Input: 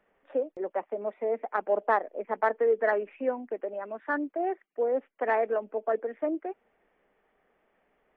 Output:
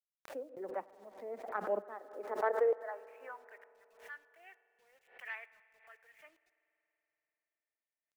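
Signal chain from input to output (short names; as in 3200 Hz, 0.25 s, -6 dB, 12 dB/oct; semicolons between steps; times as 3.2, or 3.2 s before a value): tremolo saw up 1.1 Hz, depth 100%; high-pass sweep 130 Hz -> 2600 Hz, 1.52–3.9; bit-crush 11-bit; spring tank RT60 3.7 s, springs 47 ms, chirp 30 ms, DRR 16.5 dB; dynamic EQ 1300 Hz, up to +4 dB, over -57 dBFS, Q 1.3; backwards sustainer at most 130 dB/s; gain -8.5 dB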